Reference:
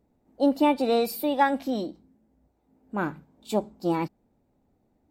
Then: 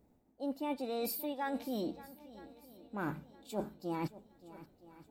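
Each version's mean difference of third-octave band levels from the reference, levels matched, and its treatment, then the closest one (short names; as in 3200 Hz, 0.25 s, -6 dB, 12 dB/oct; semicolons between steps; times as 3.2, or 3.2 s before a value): 5.5 dB: high shelf 10000 Hz +7 dB; reverse; compressor 10:1, threshold -34 dBFS, peak gain reduction 18.5 dB; reverse; swung echo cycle 0.965 s, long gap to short 1.5:1, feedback 41%, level -17.5 dB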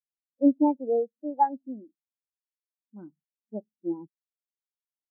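15.0 dB: Wiener smoothing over 15 samples; high shelf 2200 Hz -6.5 dB; spectral expander 2.5:1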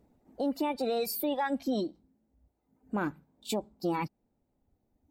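3.5 dB: reverb removal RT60 1.7 s; in parallel at -1 dB: compressor, threshold -35 dBFS, peak gain reduction 17.5 dB; on the sum: limiter -20 dBFS, peak gain reduction 11 dB; gain -2 dB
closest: third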